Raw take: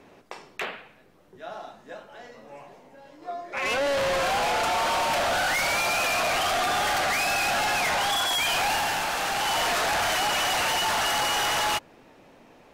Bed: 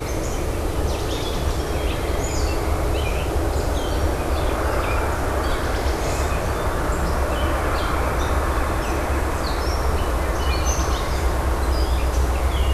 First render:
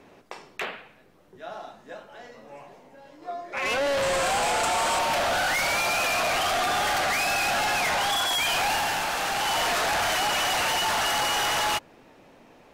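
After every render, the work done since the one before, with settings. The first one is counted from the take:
0:04.02–0:04.99: parametric band 8,000 Hz +11 dB 0.39 octaves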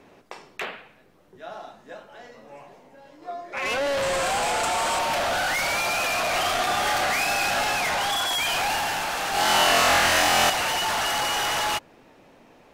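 0:06.30–0:07.75: double-tracking delay 31 ms −5.5 dB
0:09.31–0:10.50: flutter between parallel walls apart 4 metres, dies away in 1.2 s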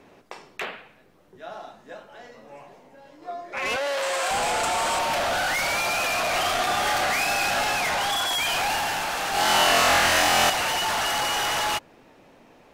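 0:03.76–0:04.31: high-pass filter 520 Hz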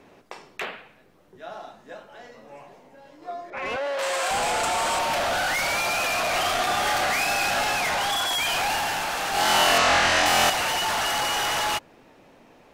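0:03.50–0:03.99: low-pass filter 1,600 Hz 6 dB per octave
0:09.78–0:10.26: low-pass filter 6,800 Hz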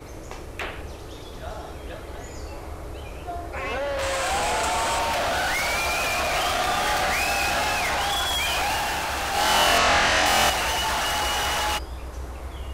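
mix in bed −14.5 dB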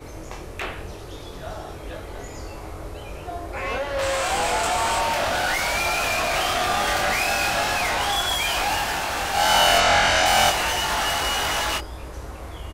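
double-tracking delay 22 ms −4.5 dB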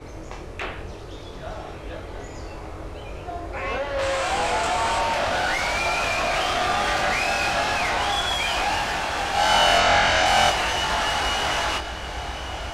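high-frequency loss of the air 56 metres
feedback delay with all-pass diffusion 1,096 ms, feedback 65%, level −14 dB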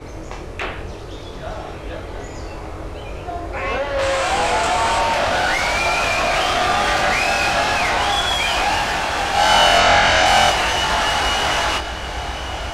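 level +5 dB
brickwall limiter −3 dBFS, peak gain reduction 1.5 dB

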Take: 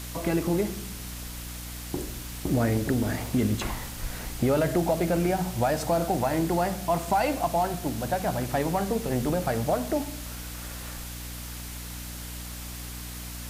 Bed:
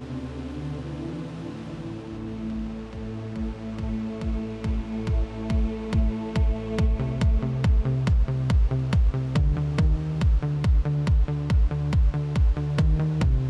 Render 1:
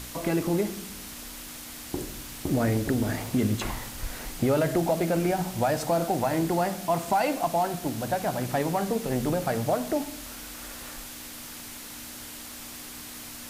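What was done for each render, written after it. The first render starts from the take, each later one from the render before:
hum removal 60 Hz, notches 3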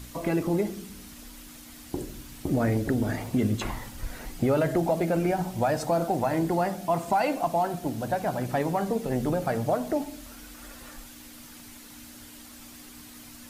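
broadband denoise 8 dB, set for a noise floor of −41 dBFS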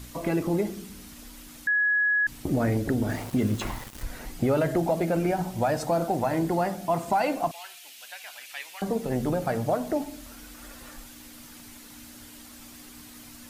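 0:01.67–0:02.27: beep over 1,680 Hz −20 dBFS
0:03.09–0:04.03: centre clipping without the shift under −38 dBFS
0:07.51–0:08.82: high-pass with resonance 2,600 Hz, resonance Q 2.3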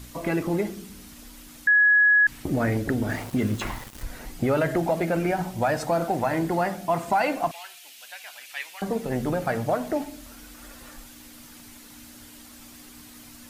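dynamic equaliser 1,800 Hz, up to +6 dB, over −41 dBFS, Q 0.91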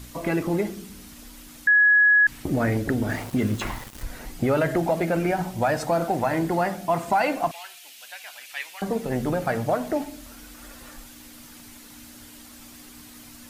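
level +1 dB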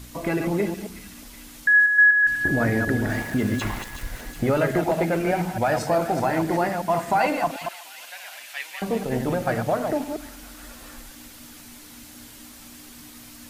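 delay that plays each chunk backwards 124 ms, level −6 dB
delay with a high-pass on its return 369 ms, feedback 57%, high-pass 2,100 Hz, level −9.5 dB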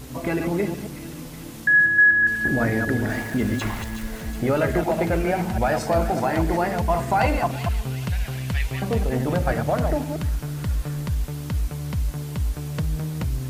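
mix in bed −4 dB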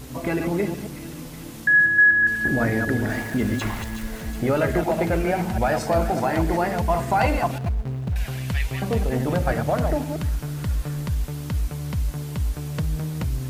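0:07.58–0:08.16: running median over 41 samples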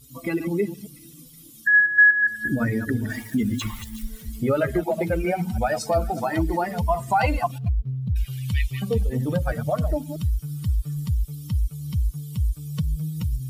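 spectral dynamics exaggerated over time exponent 2
in parallel at +2 dB: downward compressor, threshold −31 dBFS, peak gain reduction 17 dB

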